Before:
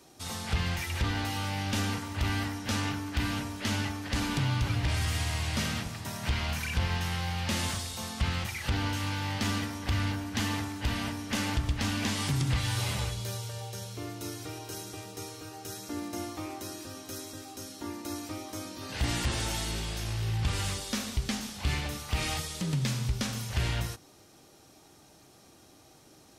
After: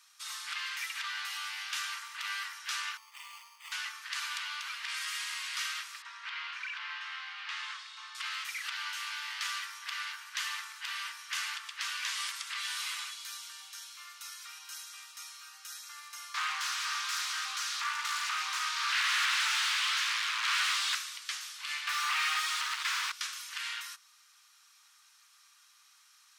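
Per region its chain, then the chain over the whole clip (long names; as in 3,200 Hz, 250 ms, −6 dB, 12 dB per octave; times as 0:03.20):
0:02.97–0:03.72: phaser with its sweep stopped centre 640 Hz, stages 4 + bad sample-rate conversion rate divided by 8×, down filtered, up hold
0:06.02–0:08.15: low-pass filter 3,800 Hz + spectral tilt −1.5 dB per octave
0:16.34–0:20.95: high-shelf EQ 6,000 Hz −7.5 dB + mid-hump overdrive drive 29 dB, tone 3,900 Hz, clips at −19 dBFS + highs frequency-modulated by the lows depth 0.63 ms
0:21.87–0:23.12: parametric band 690 Hz +4.5 dB 2 octaves + mid-hump overdrive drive 38 dB, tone 1,800 Hz, clips at −18 dBFS
whole clip: Butterworth high-pass 1,100 Hz 48 dB per octave; high-shelf EQ 10,000 Hz −6 dB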